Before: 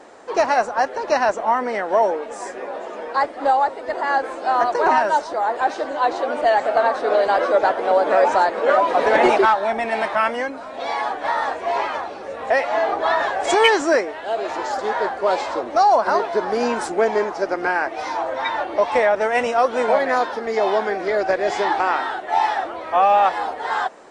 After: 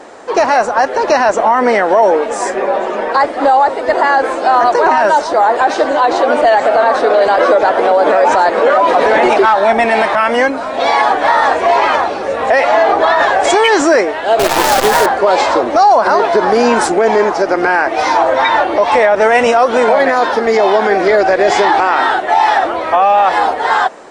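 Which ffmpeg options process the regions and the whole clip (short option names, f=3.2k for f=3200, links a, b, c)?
-filter_complex "[0:a]asettb=1/sr,asplit=3[a][b][c];[a]atrim=end=2.504[d];[b]atrim=start=2.5:end=3.12,asetpts=PTS-STARTPTS,afade=t=in:d=0.004:c=qsin,afade=t=out:st=0.616:d=0.004:c=qsin,bass=f=250:g=1,treble=f=4k:g=-5,aecho=1:1:5.2:0.45,atrim=end_sample=27342[e];[c]atrim=start=3.116[f];[d][e]acrossfade=d=0.004:c1=hsin:c2=qsin[g];[g][f]acrossfade=d=0.004:c1=qsin:c2=hsin,asettb=1/sr,asplit=3[h][i][j];[h]atrim=end=14.394[k];[i]atrim=start=14.39:end=15.06,asetpts=PTS-STARTPTS,afade=t=in:d=0.004:c=qsin,afade=t=out:st=0.666:d=0.004:c=qsin,highpass=f=180:w=0.5412,highpass=f=180:w=1.3066,acrusher=bits=5:dc=4:mix=0:aa=0.000001[l];[j]atrim=start=15.056[m];[k][l]acrossfade=d=0.004:c1=hsin:c2=qsin[n];[n][m]acrossfade=d=0.004:c1=qsin:c2=hsin,dynaudnorm=f=200:g=7:m=6dB,alimiter=level_in=10.5dB:limit=-1dB:release=50:level=0:latency=1,volume=-1dB"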